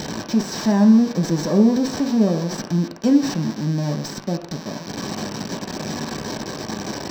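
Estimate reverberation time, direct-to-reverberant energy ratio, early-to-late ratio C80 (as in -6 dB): no single decay rate, 1.5 dB, 11.0 dB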